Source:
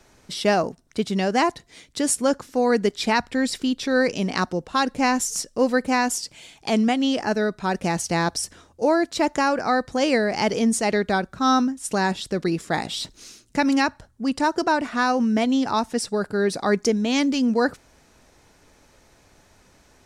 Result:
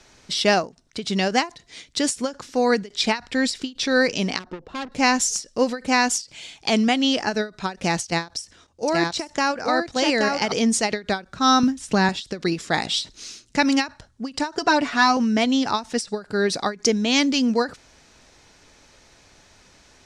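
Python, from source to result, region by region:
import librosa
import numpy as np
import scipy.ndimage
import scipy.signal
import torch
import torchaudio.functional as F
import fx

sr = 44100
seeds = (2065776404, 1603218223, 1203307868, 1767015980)

y = fx.chain(x, sr, fx.lowpass(hz=1000.0, slope=6),
    fx.peak_eq(hz=370.0, db=5.0, octaves=0.74),
    fx.tube_stage(drive_db=28.0, bias=0.3), at=(4.39, 4.92))
y = fx.chain(y, sr, fx.level_steps(step_db=11),
    fx.echo_single(ms=827, db=-3.5), at=(8.05, 10.52))
y = fx.chain(y, sr, fx.block_float(bits=7),
    fx.bass_treble(bass_db=8, treble_db=-6),
    fx.band_squash(depth_pct=40), at=(11.63, 12.09))
y = fx.chain(y, sr, fx.high_shelf(hz=12000.0, db=-5.0),
    fx.comb(ms=7.0, depth=0.72),
    fx.resample_bad(factor=2, down='none', up='filtered'), at=(14.57, 15.17))
y = scipy.signal.sosfilt(scipy.signal.butter(2, 5700.0, 'lowpass', fs=sr, output='sos'), y)
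y = fx.high_shelf(y, sr, hz=2400.0, db=11.0)
y = fx.end_taper(y, sr, db_per_s=240.0)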